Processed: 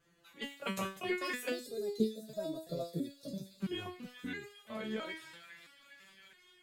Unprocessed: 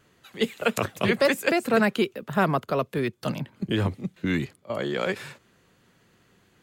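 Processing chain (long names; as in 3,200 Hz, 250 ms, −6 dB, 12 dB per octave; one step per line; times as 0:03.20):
on a send: delay with a high-pass on its return 407 ms, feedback 80%, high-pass 2,400 Hz, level −10.5 dB
on the sum: gain on a spectral selection 0:01.51–0:03.61, 670–3,300 Hz −21 dB
step-sequenced resonator 3 Hz 170–410 Hz
level +2.5 dB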